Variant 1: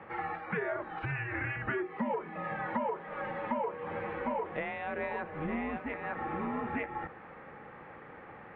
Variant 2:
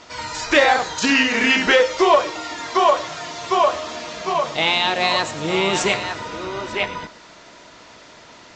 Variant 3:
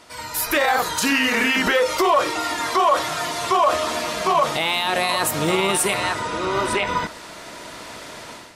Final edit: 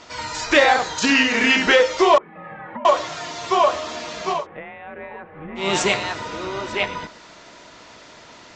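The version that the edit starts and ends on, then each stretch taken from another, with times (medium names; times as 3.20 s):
2
2.18–2.85 s: from 1
4.39–5.63 s: from 1, crossfade 0.16 s
not used: 3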